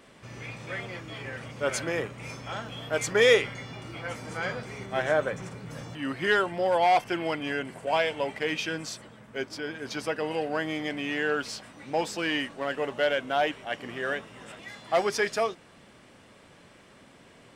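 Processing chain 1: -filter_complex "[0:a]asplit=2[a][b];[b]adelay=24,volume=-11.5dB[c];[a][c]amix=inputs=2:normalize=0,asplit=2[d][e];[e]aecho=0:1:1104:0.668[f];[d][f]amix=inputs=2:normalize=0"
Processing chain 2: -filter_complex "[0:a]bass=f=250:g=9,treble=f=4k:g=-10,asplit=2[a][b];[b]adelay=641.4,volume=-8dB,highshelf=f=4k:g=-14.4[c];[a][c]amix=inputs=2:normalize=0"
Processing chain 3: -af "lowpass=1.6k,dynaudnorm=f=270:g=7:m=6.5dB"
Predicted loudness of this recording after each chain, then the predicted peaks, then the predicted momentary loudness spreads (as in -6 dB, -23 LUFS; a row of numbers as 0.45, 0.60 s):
-27.5, -28.0, -23.5 LUFS; -8.0, -8.5, -5.0 dBFS; 13, 12, 17 LU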